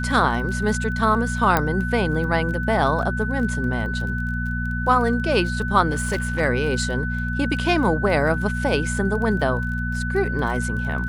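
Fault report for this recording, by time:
surface crackle 19 per second −30 dBFS
mains hum 60 Hz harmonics 4 −26 dBFS
whistle 1,500 Hz −28 dBFS
0:01.57: click −5 dBFS
0:05.91–0:06.41: clipping −18.5 dBFS

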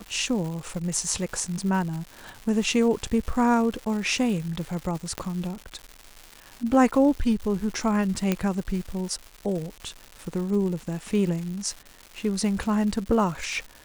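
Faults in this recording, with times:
surface crackle 320 per second −33 dBFS
0:05.18: click −14 dBFS
0:08.32: click −9 dBFS

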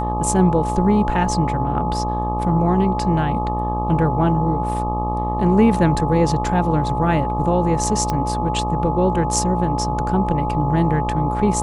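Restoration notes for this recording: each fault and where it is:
mains buzz 60 Hz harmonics 21 −24 dBFS
whistle 850 Hz −23 dBFS
0:08.10: click −9 dBFS

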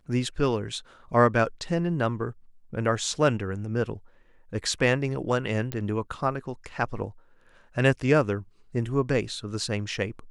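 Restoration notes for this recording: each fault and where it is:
0:05.72: click −15 dBFS

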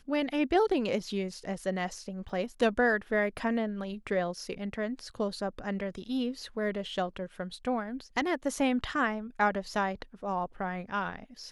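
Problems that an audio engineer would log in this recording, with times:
0:02.29: drop-out 3.5 ms

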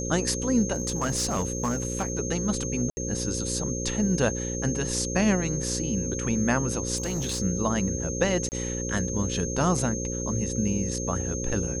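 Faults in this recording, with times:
mains buzz 60 Hz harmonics 9 −32 dBFS
whistle 6,400 Hz −33 dBFS
0:00.73–0:02.12: clipping −21.5 dBFS
0:02.90–0:02.97: drop-out 70 ms
0:06.96–0:07.40: clipping −24.5 dBFS
0:08.49–0:08.52: drop-out 29 ms

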